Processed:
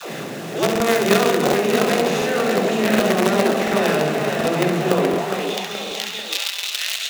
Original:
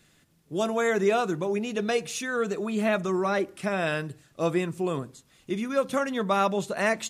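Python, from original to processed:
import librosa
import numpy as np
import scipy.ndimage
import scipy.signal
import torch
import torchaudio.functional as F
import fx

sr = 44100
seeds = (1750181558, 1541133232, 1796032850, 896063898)

p1 = fx.bin_compress(x, sr, power=0.4)
p2 = scipy.signal.sosfilt(scipy.signal.butter(2, 5000.0, 'lowpass', fs=sr, output='sos'), p1)
p3 = fx.rev_spring(p2, sr, rt60_s=3.8, pass_ms=(33, 41), chirp_ms=80, drr_db=6.0)
p4 = fx.filter_lfo_notch(p3, sr, shape='saw_down', hz=5.1, low_hz=860.0, high_hz=2100.0, q=1.4)
p5 = fx.dispersion(p4, sr, late='lows', ms=118.0, hz=330.0)
p6 = fx.quant_companded(p5, sr, bits=2)
p7 = p5 + F.gain(torch.from_numpy(p6), -5.0).numpy()
p8 = scipy.signal.sosfilt(scipy.signal.butter(2, 99.0, 'highpass', fs=sr, output='sos'), p7)
p9 = fx.low_shelf(p8, sr, hz=130.0, db=-8.0)
p10 = p9 + fx.room_flutter(p9, sr, wall_m=11.6, rt60_s=0.62, dry=0)
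p11 = fx.filter_sweep_highpass(p10, sr, from_hz=140.0, to_hz=3300.0, start_s=4.97, end_s=5.47, q=2.0)
p12 = fx.echo_pitch(p11, sr, ms=686, semitones=1, count=3, db_per_echo=-6.0)
p13 = fx.buffer_crackle(p12, sr, first_s=0.71, period_s=0.73, block=2048, kind='repeat')
y = F.gain(torch.from_numpy(p13), -2.5).numpy()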